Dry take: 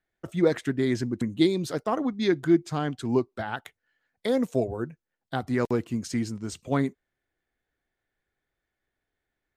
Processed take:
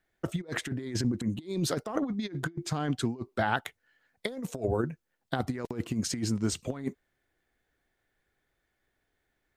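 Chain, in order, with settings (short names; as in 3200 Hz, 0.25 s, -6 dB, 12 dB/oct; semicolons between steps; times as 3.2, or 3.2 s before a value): negative-ratio compressor -30 dBFS, ratio -0.5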